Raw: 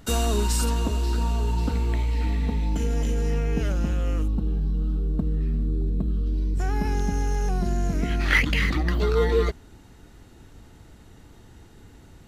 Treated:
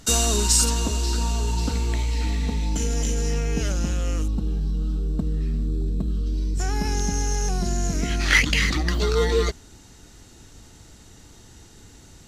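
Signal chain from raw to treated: bell 6400 Hz +13.5 dB 1.6 oct

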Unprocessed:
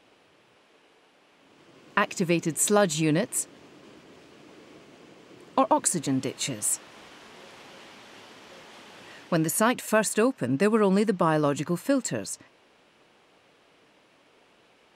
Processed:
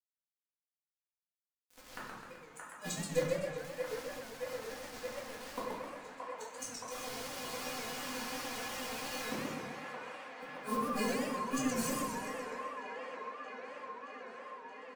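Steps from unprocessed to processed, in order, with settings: bell 6300 Hz +9.5 dB 0.3 oct; comb 6.6 ms, depth 45%; dynamic EQ 240 Hz, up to -6 dB, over -38 dBFS, Q 1.3; in parallel at +1 dB: negative-ratio compressor -27 dBFS, ratio -0.5; on the sum: metallic resonator 250 Hz, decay 0.24 s, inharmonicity 0.008; bit-crush 8-bit; flipped gate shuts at -28 dBFS, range -41 dB; band-limited delay 0.623 s, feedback 80%, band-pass 1100 Hz, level -3 dB; shoebox room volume 140 m³, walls mixed, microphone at 1.9 m; warbling echo 0.128 s, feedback 58%, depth 216 cents, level -3.5 dB; gain -1.5 dB

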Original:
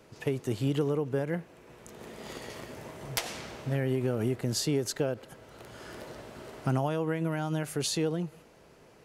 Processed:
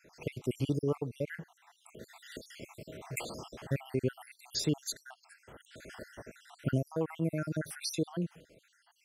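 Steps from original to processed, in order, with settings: random spectral dropouts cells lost 66%

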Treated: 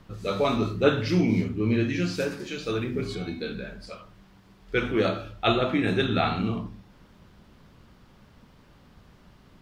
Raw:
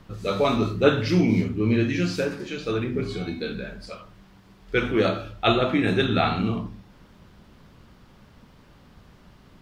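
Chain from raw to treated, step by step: 2.2–3.15 high shelf 4500 Hz +7 dB; gain -2.5 dB

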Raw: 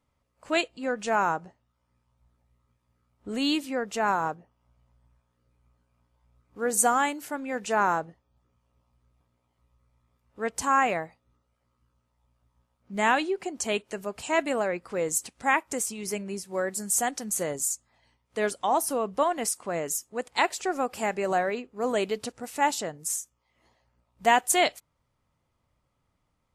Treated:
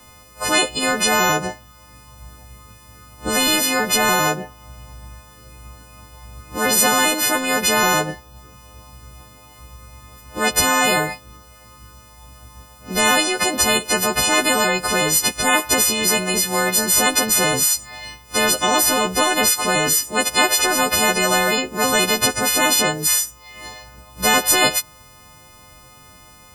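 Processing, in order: frequency quantiser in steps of 3 st; spectral compressor 4:1; gain -1.5 dB

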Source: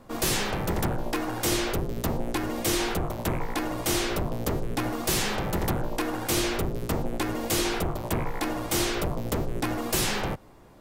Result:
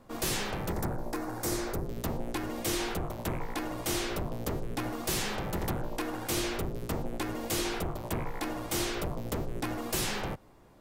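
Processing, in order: 0.72–1.86 bell 3000 Hz -11.5 dB 0.79 oct; gain -5.5 dB

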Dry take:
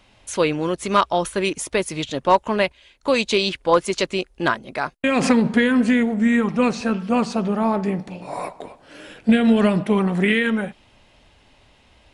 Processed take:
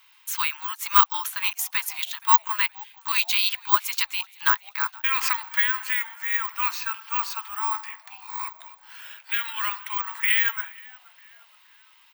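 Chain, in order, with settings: steep high-pass 900 Hz 96 dB/oct; on a send: frequency-shifting echo 0.472 s, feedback 43%, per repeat -110 Hz, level -24 dB; on the sum: careless resampling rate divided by 2×, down filtered, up zero stuff; gain -1 dB

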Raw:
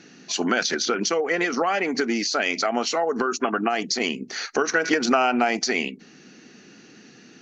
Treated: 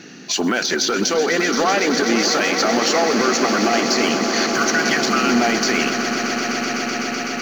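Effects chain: block floating point 7-bit; spectral repair 4.42–5.34, 210–1100 Hz; in parallel at 0 dB: level quantiser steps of 17 dB; on the sum: limiter -12 dBFS, peak gain reduction 5.5 dB; soft clip -13.5 dBFS, distortion -21 dB; swelling echo 0.126 s, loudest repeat 8, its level -12 dB; on a send at -21.5 dB: reverb RT60 2.9 s, pre-delay 15 ms; on the sum: gain +4 dB

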